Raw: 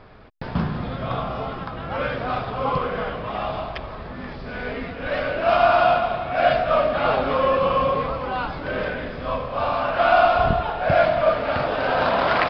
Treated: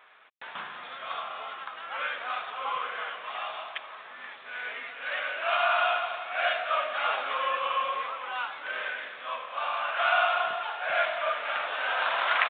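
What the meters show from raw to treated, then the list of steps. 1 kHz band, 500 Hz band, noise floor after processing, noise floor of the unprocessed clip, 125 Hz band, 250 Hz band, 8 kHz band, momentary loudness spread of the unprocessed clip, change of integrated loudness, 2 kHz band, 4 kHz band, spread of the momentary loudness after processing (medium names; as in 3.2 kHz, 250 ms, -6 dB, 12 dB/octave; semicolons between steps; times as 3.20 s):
-7.5 dB, -14.0 dB, -46 dBFS, -35 dBFS, under -35 dB, under -25 dB, no reading, 13 LU, -7.5 dB, -2.0 dB, -1.0 dB, 14 LU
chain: high-pass 1.4 kHz 12 dB/octave; resampled via 8 kHz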